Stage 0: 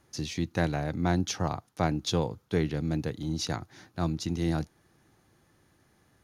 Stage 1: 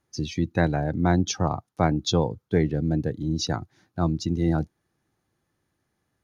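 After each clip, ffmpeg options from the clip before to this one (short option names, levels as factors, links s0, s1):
-af "afftdn=nr=16:nf=-37,volume=1.88"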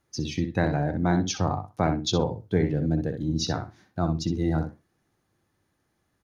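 -filter_complex "[0:a]asplit=2[s0][s1];[s1]acompressor=threshold=0.0316:ratio=6,volume=1.06[s2];[s0][s2]amix=inputs=2:normalize=0,flanger=delay=1.4:depth=9.5:regen=80:speed=0.99:shape=sinusoidal,asplit=2[s3][s4];[s4]adelay=62,lowpass=f=3500:p=1,volume=0.447,asplit=2[s5][s6];[s6]adelay=62,lowpass=f=3500:p=1,volume=0.15,asplit=2[s7][s8];[s8]adelay=62,lowpass=f=3500:p=1,volume=0.15[s9];[s3][s5][s7][s9]amix=inputs=4:normalize=0"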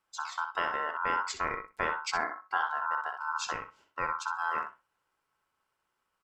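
-af "aeval=exprs='val(0)*sin(2*PI*1200*n/s)':c=same,volume=0.596"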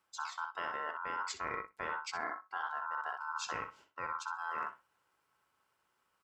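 -af "highpass=56,areverse,acompressor=threshold=0.0126:ratio=6,areverse,volume=1.33"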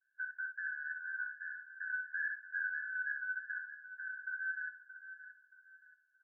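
-af "asuperpass=centerf=1600:order=20:qfactor=5.9,aecho=1:1:625|1250|1875:0.251|0.0829|0.0274,afftfilt=real='re*eq(mod(floor(b*sr/1024/1300),2),1)':imag='im*eq(mod(floor(b*sr/1024/1300),2),1)':win_size=1024:overlap=0.75,volume=2.51"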